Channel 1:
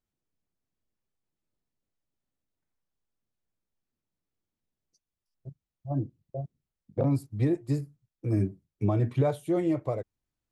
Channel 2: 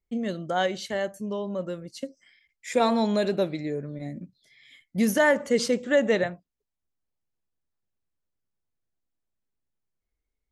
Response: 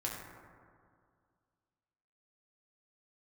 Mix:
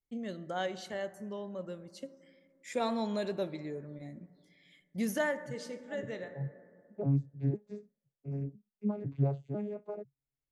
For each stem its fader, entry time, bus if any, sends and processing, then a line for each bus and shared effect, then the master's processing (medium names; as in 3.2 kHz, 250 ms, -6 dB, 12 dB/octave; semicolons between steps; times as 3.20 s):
-6.0 dB, 0.00 s, no send, vocoder on a broken chord bare fifth, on C#3, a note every 502 ms
-11.0 dB, 0.00 s, send -14 dB, auto duck -11 dB, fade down 0.25 s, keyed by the first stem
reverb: on, RT60 2.1 s, pre-delay 4 ms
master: none